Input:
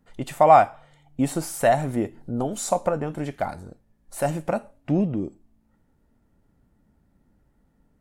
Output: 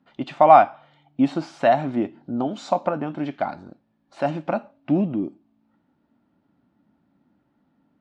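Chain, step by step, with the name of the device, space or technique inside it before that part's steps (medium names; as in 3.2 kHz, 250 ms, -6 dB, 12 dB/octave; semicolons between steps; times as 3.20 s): kitchen radio (cabinet simulation 200–4200 Hz, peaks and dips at 280 Hz +4 dB, 460 Hz -10 dB, 1.9 kHz -5 dB); trim +3 dB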